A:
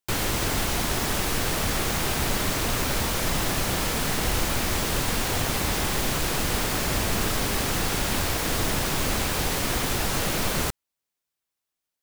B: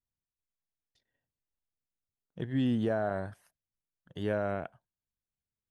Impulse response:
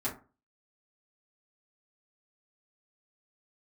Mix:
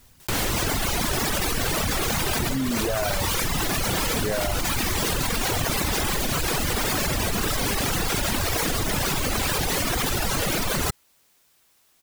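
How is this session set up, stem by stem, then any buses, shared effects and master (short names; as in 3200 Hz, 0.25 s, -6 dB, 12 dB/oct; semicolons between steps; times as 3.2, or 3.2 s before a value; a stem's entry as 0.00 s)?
-5.0 dB, 0.20 s, no send, dry
-1.5 dB, 0.00 s, send -18 dB, dry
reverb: on, RT60 0.35 s, pre-delay 4 ms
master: reverb removal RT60 1.8 s; fast leveller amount 100%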